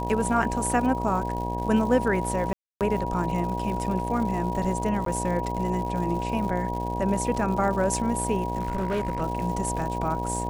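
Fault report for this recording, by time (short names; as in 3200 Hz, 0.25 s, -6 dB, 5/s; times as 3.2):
buzz 60 Hz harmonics 16 -31 dBFS
crackle 190/s -34 dBFS
tone 960 Hz -32 dBFS
2.53–2.81 gap 0.278 s
5.05–5.06 gap 13 ms
8.6–9.22 clipped -22.5 dBFS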